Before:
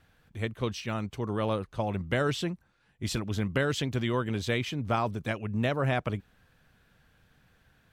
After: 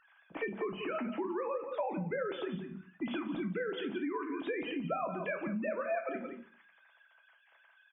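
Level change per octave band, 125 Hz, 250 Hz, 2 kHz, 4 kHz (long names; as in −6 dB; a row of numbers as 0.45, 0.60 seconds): −16.0, −4.5, −6.0, −12.0 decibels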